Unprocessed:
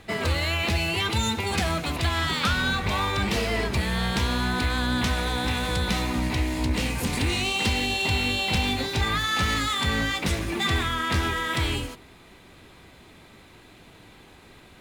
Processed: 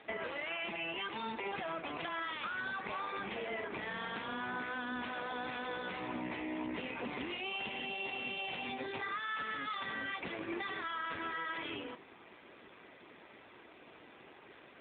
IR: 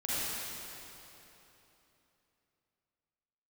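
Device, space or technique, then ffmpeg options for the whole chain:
voicemail: -filter_complex "[0:a]asplit=3[a][b][c];[a]afade=t=out:st=5.93:d=0.02[d];[b]highshelf=f=11k:g=-4.5,afade=t=in:st=5.93:d=0.02,afade=t=out:st=6.91:d=0.02[e];[c]afade=t=in:st=6.91:d=0.02[f];[d][e][f]amix=inputs=3:normalize=0,highpass=310,lowpass=3.2k,acompressor=threshold=-35dB:ratio=6" -ar 8000 -c:a libopencore_amrnb -b:a 7400

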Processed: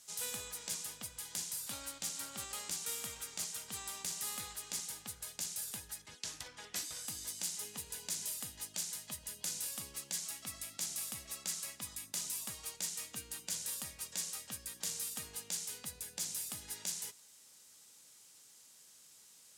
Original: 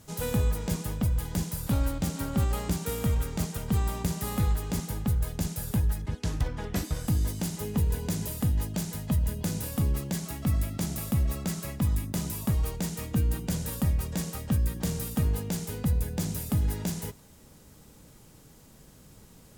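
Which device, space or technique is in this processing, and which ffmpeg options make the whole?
piezo pickup straight into a mixer: -af "lowpass=7.9k,aderivative,volume=4.5dB"

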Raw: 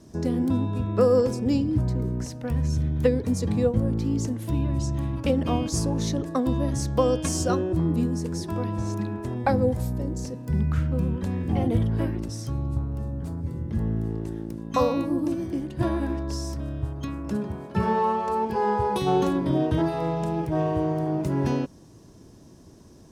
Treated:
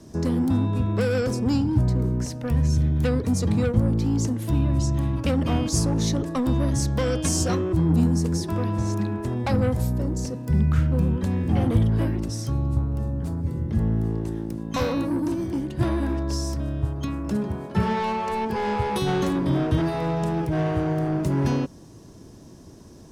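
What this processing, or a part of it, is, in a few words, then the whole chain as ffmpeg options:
one-band saturation: -filter_complex "[0:a]asettb=1/sr,asplit=3[a][b][c];[a]atrim=end=7.894[d];[b]atrim=start=7.89:end=8.37,asetpts=PTS-STARTPTS,afade=t=in:d=0.004:c=qsin,afade=t=out:st=0.476:d=0.004:c=qsin,bass=f=250:g=4,treble=f=4k:g=2[e];[c]atrim=start=8.366[f];[d][e]acrossfade=d=0.004:c1=hsin:c2=qsin[g];[g][f]acrossfade=d=0.004:c1=qsin:c2=hsin,acrossover=split=210|2700[h][i][j];[i]asoftclip=type=tanh:threshold=-28dB[k];[h][k][j]amix=inputs=3:normalize=0,volume=4dB"

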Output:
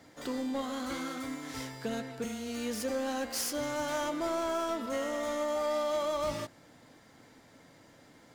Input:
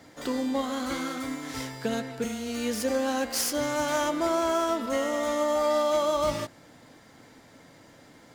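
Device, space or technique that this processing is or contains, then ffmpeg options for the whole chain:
parallel distortion: -filter_complex "[0:a]asplit=2[a][b];[b]asoftclip=type=hard:threshold=-28dB,volume=-4dB[c];[a][c]amix=inputs=2:normalize=0,volume=-9dB"

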